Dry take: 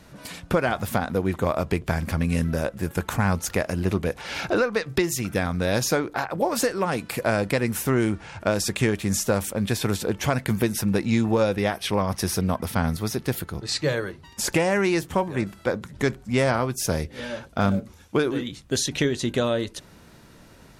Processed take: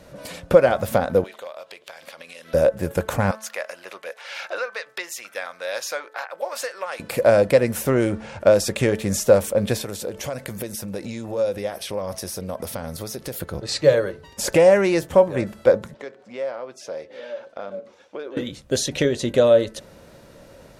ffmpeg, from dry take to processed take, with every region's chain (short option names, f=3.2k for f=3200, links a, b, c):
-filter_complex "[0:a]asettb=1/sr,asplit=3[a][b][c];[a]atrim=end=1.244[d];[b]atrim=start=1.24:end=2.54,asetpts=PTS-STARTPTS,afade=t=in:d=0.004:c=qsin,afade=t=out:st=1.296:d=0.004:c=qsin,highpass=750,equalizer=f=3.5k:t=o:w=1.1:g=11,acompressor=threshold=-40dB:ratio=5:attack=3.2:release=140:knee=1:detection=peak[e];[c]atrim=start=2.536[f];[d][e]acrossfade=d=0.004:c1=hsin:c2=qsin[g];[g][f]acrossfade=d=0.004:c1=qsin:c2=hsin,asettb=1/sr,asplit=3[h][i][j];[h]atrim=end=3.314[k];[i]atrim=start=3.31:end=7,asetpts=PTS-STARTPTS,afade=t=in:d=0.004:c=qsin,afade=t=out:st=3.686:d=0.004:c=qsin,highpass=1.3k,highshelf=f=4.5k:g=-7.5[l];[j]atrim=start=6.996[m];[k][l]acrossfade=d=0.004:c1=hsin:c2=qsin[n];[n][m]acrossfade=d=0.004:c1=qsin:c2=hsin,asettb=1/sr,asplit=3[o][p][q];[o]atrim=end=9.814[r];[p]atrim=start=9.81:end=13.4,asetpts=PTS-STARTPTS,afade=t=in:d=0.004:c=qsin,afade=t=out:st=3.586:d=0.004:c=qsin,bass=f=250:g=-2,treble=f=4k:g=7,acompressor=threshold=-29dB:ratio=8:attack=3.2:release=140:knee=1:detection=peak[s];[q]atrim=start=13.396[t];[r][s]acrossfade=d=0.004:c1=hsin:c2=qsin[u];[u][t]acrossfade=d=0.004:c1=qsin:c2=hsin,asettb=1/sr,asplit=3[v][w][x];[v]atrim=end=15.944[y];[w]atrim=start=15.94:end=18.37,asetpts=PTS-STARTPTS,afade=t=in:d=0.004:c=qsin,afade=t=out:st=2.426:d=0.004:c=qsin,highpass=380,lowpass=4.6k,acompressor=threshold=-45dB:ratio=2:attack=3.2:release=140:knee=1:detection=peak[z];[x]atrim=start=18.366[aa];[y][z]acrossfade=d=0.004:c1=hsin:c2=qsin[ab];[ab][aa]acrossfade=d=0.004:c1=qsin:c2=hsin,acontrast=24,equalizer=f=550:w=3:g=13.5,bandreject=f=218.3:t=h:w=4,bandreject=f=436.6:t=h:w=4,bandreject=f=654.9:t=h:w=4,bandreject=f=873.2:t=h:w=4,bandreject=f=1.0915k:t=h:w=4,bandreject=f=1.3098k:t=h:w=4,bandreject=f=1.5281k:t=h:w=4,bandreject=f=1.7464k:t=h:w=4,bandreject=f=1.9647k:t=h:w=4,volume=-4.5dB"